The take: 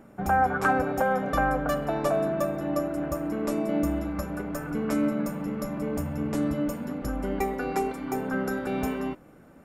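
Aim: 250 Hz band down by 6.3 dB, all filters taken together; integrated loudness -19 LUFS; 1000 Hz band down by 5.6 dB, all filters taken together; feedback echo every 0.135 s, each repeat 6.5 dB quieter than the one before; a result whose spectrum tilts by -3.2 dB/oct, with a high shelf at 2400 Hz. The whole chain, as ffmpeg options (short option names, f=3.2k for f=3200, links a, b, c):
-af "equalizer=f=250:t=o:g=-7.5,equalizer=f=1k:t=o:g=-6.5,highshelf=f=2.4k:g=-7,aecho=1:1:135|270|405|540|675|810:0.473|0.222|0.105|0.0491|0.0231|0.0109,volume=13dB"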